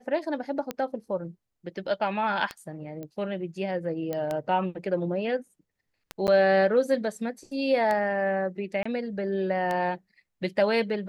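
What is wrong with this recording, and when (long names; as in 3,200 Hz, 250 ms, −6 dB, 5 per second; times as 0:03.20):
scratch tick 33 1/3 rpm −16 dBFS
0:03.03: click −26 dBFS
0:04.13: click −18 dBFS
0:06.27–0:06.28: drop-out 9.2 ms
0:08.83–0:08.86: drop-out 25 ms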